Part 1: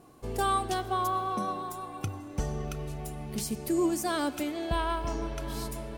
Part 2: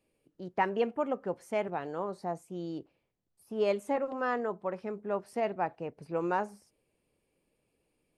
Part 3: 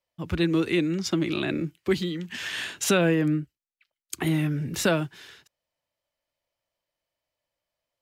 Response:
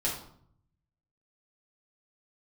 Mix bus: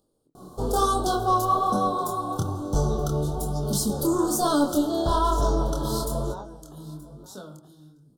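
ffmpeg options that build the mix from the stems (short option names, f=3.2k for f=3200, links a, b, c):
-filter_complex "[0:a]aeval=exprs='0.168*sin(PI/2*2.24*val(0)/0.168)':c=same,adelay=350,volume=0.5dB,asplit=3[a][b][c];[b]volume=-17.5dB[d];[c]volume=-20.5dB[e];[1:a]alimiter=limit=-23dB:level=0:latency=1,acompressor=mode=upward:threshold=-55dB:ratio=2.5,volume=-3dB,asplit=2[f][g];[g]volume=-16.5dB[h];[2:a]highshelf=f=5.5k:g=5.5,adelay=2500,volume=-17.5dB,asplit=3[i][j][k];[j]volume=-10dB[l];[k]volume=-6dB[m];[3:a]atrim=start_sample=2205[n];[d][l]amix=inputs=2:normalize=0[o];[o][n]afir=irnorm=-1:irlink=0[p];[e][h][m]amix=inputs=3:normalize=0,aecho=0:1:926:1[q];[a][f][i][p][q]amix=inputs=5:normalize=0,flanger=delay=20:depth=7.1:speed=1.1,asuperstop=centerf=2200:order=8:qfactor=1.1"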